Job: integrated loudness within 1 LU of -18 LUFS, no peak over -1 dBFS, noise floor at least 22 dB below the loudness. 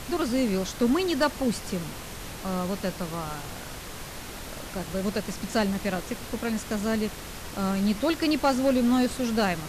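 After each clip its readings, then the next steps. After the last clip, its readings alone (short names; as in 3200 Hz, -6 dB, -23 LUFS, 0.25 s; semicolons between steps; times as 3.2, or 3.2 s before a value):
clipped 0.3%; flat tops at -15.5 dBFS; noise floor -39 dBFS; noise floor target -50 dBFS; loudness -27.5 LUFS; peak -15.5 dBFS; loudness target -18.0 LUFS
-> clip repair -15.5 dBFS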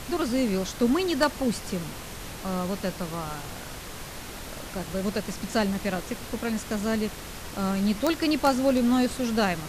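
clipped 0.0%; noise floor -39 dBFS; noise floor target -50 dBFS
-> noise print and reduce 11 dB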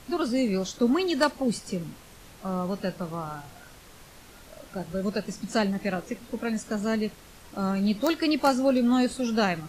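noise floor -50 dBFS; loudness -27.5 LUFS; peak -7.5 dBFS; loudness target -18.0 LUFS
-> gain +9.5 dB; limiter -1 dBFS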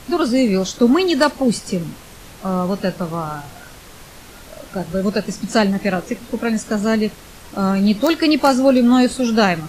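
loudness -18.0 LUFS; peak -1.0 dBFS; noise floor -41 dBFS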